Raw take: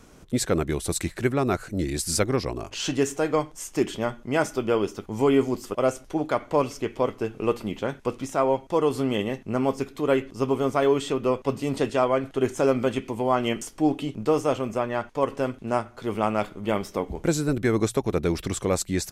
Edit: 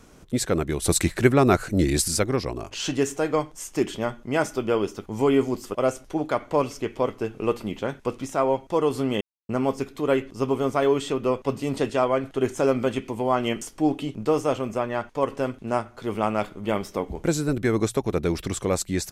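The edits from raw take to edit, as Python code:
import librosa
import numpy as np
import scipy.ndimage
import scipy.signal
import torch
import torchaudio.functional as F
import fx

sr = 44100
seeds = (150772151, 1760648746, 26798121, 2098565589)

y = fx.edit(x, sr, fx.clip_gain(start_s=0.82, length_s=1.26, db=6.0),
    fx.silence(start_s=9.21, length_s=0.28), tone=tone)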